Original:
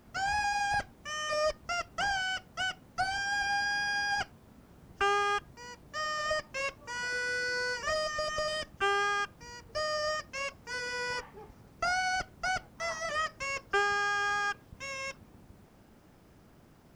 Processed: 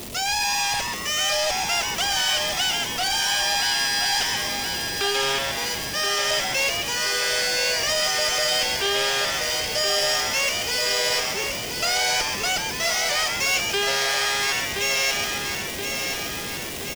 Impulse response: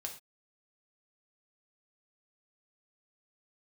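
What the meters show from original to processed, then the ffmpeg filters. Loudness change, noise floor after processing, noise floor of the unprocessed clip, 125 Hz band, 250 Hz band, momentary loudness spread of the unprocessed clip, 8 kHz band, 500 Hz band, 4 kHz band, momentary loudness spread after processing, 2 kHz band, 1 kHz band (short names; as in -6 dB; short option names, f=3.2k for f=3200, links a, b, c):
+10.5 dB, -30 dBFS, -59 dBFS, +10.0 dB, +12.5 dB, 10 LU, +19.0 dB, +8.0 dB, +17.5 dB, 5 LU, +7.0 dB, +5.0 dB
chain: -filter_complex "[0:a]aeval=exprs='val(0)+0.5*0.01*sgn(val(0))':c=same,equalizer=f=440:t=o:w=0.93:g=7.5,asplit=2[a][b];[b]asplit=6[c][d][e][f][g][h];[c]adelay=134,afreqshift=140,volume=-7dB[i];[d]adelay=268,afreqshift=280,volume=-13dB[j];[e]adelay=402,afreqshift=420,volume=-19dB[k];[f]adelay=536,afreqshift=560,volume=-25.1dB[l];[g]adelay=670,afreqshift=700,volume=-31.1dB[m];[h]adelay=804,afreqshift=840,volume=-37.1dB[n];[i][j][k][l][m][n]amix=inputs=6:normalize=0[o];[a][o]amix=inputs=2:normalize=0,asoftclip=type=tanh:threshold=-27dB,highshelf=f=3.3k:g=-8,aexciter=amount=5.8:drive=5.3:freq=2.2k,asplit=2[p][q];[q]aecho=0:1:1024|2048|3072|4096|5120|6144|7168|8192:0.501|0.291|0.169|0.0978|0.0567|0.0329|0.0191|0.0111[r];[p][r]amix=inputs=2:normalize=0,volume=4dB"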